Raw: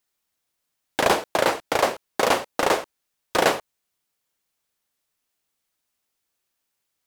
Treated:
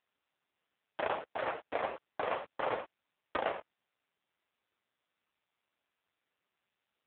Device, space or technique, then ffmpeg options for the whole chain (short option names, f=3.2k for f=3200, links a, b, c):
voicemail: -af "highpass=340,lowpass=2.9k,acompressor=threshold=-23dB:ratio=8,volume=-2.5dB" -ar 8000 -c:a libopencore_amrnb -b:a 5900